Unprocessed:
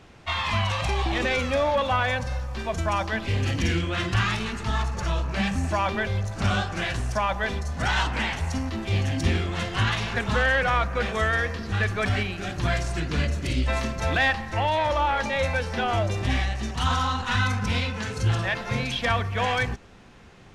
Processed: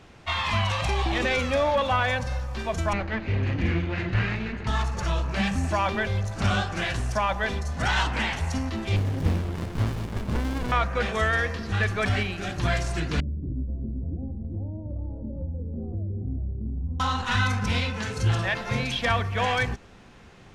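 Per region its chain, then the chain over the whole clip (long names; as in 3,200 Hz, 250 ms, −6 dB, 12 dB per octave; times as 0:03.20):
0:02.93–0:04.67: lower of the sound and its delayed copy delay 0.45 ms + low-pass filter 2,400 Hz
0:08.96–0:10.72: variable-slope delta modulation 64 kbit/s + windowed peak hold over 65 samples
0:13.20–0:17.00: inverse Chebyshev low-pass filter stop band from 2,000 Hz, stop band 80 dB + single-tap delay 387 ms −7 dB + downward compressor 2.5 to 1, threshold −28 dBFS
whole clip: no processing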